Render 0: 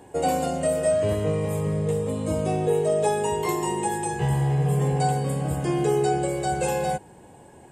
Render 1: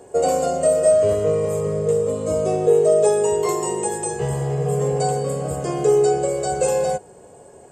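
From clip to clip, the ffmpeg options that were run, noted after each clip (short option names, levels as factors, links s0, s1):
-af "superequalizer=7b=3.16:8b=2.82:10b=2:14b=2:15b=2.82,volume=0.794"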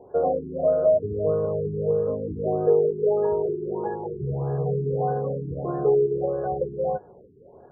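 -af "afftfilt=real='re*lt(b*sr/1024,420*pow(1800/420,0.5+0.5*sin(2*PI*1.6*pts/sr)))':imag='im*lt(b*sr/1024,420*pow(1800/420,0.5+0.5*sin(2*PI*1.6*pts/sr)))':win_size=1024:overlap=0.75,volume=0.668"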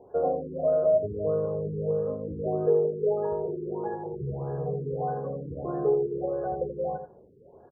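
-af "aecho=1:1:83:0.335,volume=0.631"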